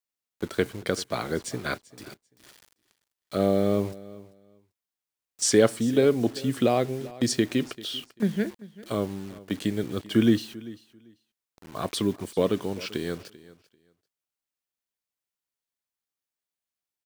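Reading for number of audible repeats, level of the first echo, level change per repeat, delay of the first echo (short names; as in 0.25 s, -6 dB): 2, -19.5 dB, -15.0 dB, 0.391 s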